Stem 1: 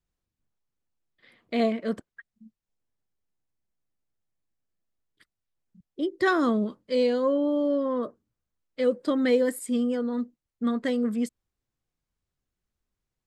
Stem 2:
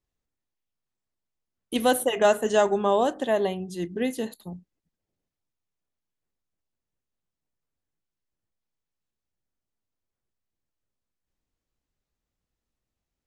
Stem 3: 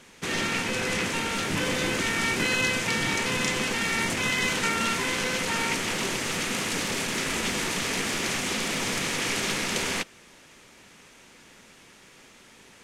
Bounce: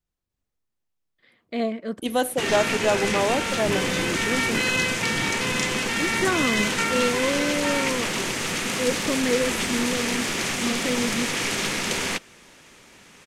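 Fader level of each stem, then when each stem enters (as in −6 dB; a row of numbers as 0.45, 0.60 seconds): −1.5, −1.5, +2.0 decibels; 0.00, 0.30, 2.15 seconds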